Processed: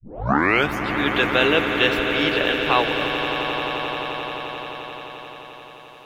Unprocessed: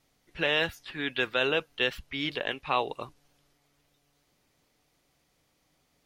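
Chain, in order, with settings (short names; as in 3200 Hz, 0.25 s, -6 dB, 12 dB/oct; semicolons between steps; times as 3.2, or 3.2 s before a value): tape start at the beginning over 0.73 s; swelling echo 87 ms, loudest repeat 8, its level -12 dB; gain +7.5 dB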